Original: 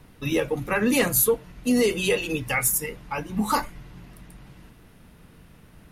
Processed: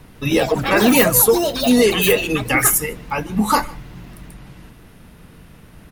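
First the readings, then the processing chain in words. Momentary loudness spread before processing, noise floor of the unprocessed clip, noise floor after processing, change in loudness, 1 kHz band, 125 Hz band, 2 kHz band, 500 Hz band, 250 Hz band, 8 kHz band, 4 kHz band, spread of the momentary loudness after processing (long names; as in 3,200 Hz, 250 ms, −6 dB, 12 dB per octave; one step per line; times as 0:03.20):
9 LU, −52 dBFS, −45 dBFS, +8.0 dB, +9.0 dB, +7.5 dB, +7.5 dB, +8.0 dB, +7.5 dB, +7.5 dB, +9.5 dB, 10 LU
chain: delay with pitch and tempo change per echo 153 ms, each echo +6 semitones, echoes 3, each echo −6 dB
slap from a distant wall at 26 metres, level −23 dB
level +7 dB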